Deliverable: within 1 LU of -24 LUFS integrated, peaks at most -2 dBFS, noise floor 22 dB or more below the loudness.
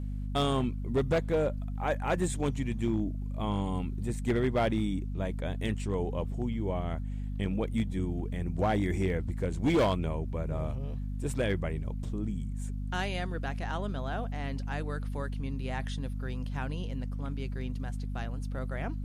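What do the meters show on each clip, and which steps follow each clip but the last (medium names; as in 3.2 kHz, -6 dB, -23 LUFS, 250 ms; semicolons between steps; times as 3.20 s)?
clipped samples 0.6%; clipping level -21.0 dBFS; hum 50 Hz; highest harmonic 250 Hz; hum level -32 dBFS; loudness -32.5 LUFS; peak level -21.0 dBFS; loudness target -24.0 LUFS
-> clip repair -21 dBFS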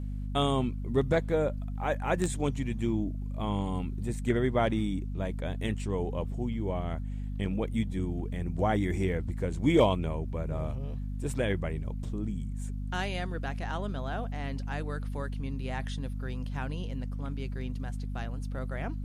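clipped samples 0.0%; hum 50 Hz; highest harmonic 250 Hz; hum level -32 dBFS
-> de-hum 50 Hz, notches 5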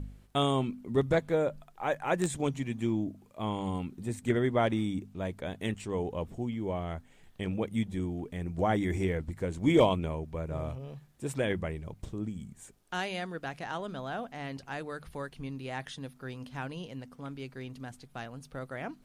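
hum not found; loudness -33.5 LUFS; peak level -12.0 dBFS; loudness target -24.0 LUFS
-> trim +9.5 dB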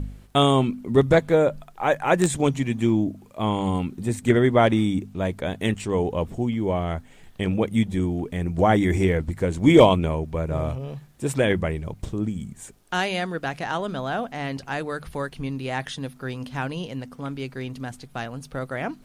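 loudness -24.0 LUFS; peak level -2.5 dBFS; noise floor -50 dBFS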